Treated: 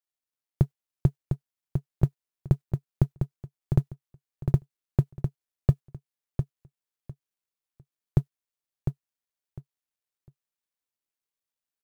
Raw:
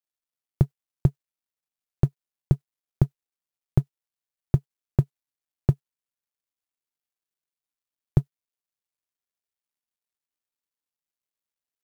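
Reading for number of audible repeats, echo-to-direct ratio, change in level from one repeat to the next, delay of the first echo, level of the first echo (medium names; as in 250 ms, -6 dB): 3, -6.0 dB, -14.0 dB, 703 ms, -6.0 dB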